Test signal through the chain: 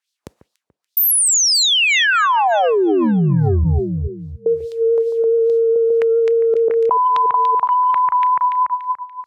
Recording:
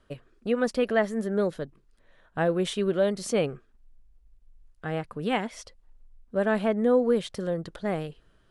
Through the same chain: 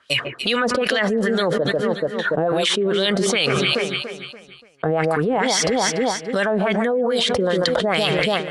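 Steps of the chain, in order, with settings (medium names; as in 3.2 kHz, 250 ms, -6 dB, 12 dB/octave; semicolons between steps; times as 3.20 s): spectral noise reduction 9 dB; high-pass 63 Hz 24 dB/octave; gate with hold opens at -58 dBFS; tone controls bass +9 dB, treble +10 dB; peak limiter -18 dBFS; LFO band-pass sine 2.4 Hz 420–4200 Hz; echo whose repeats swap between lows and highs 144 ms, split 2 kHz, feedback 58%, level -13.5 dB; Chebyshev shaper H 3 -35 dB, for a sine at -17.5 dBFS; level flattener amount 100%; trim +8 dB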